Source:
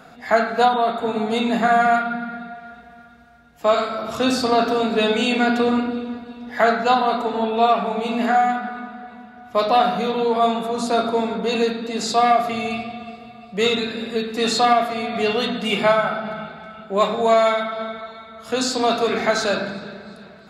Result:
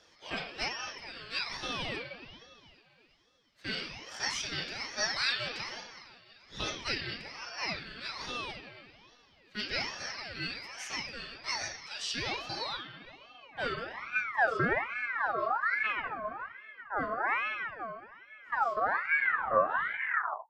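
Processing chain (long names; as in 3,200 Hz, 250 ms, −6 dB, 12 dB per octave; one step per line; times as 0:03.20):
turntable brake at the end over 1.96 s
band-pass filter sweep 3,300 Hz → 230 Hz, 0:12.25–0:15.24
ring modulator whose carrier an LFO sweeps 1,400 Hz, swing 40%, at 1.2 Hz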